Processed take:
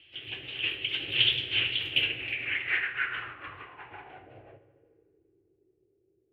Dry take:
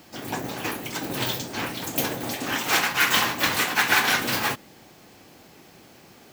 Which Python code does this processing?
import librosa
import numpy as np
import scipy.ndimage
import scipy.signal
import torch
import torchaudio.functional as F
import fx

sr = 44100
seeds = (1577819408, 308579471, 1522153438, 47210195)

y = fx.doppler_pass(x, sr, speed_mps=7, closest_m=4.8, pass_at_s=1.47)
y = fx.curve_eq(y, sr, hz=(110.0, 220.0, 360.0, 940.0, 2800.0, 4700.0, 7100.0, 11000.0), db=(0, -22, -5, -20, 6, -16, -24, 1))
y = fx.echo_filtered(y, sr, ms=76, feedback_pct=85, hz=4300.0, wet_db=-16.5)
y = fx.rev_plate(y, sr, seeds[0], rt60_s=2.8, hf_ratio=0.95, predelay_ms=0, drr_db=15.0)
y = fx.filter_sweep_lowpass(y, sr, from_hz=3200.0, to_hz=400.0, start_s=1.88, end_s=5.23, q=5.2)
y = y * librosa.db_to_amplitude(-3.0)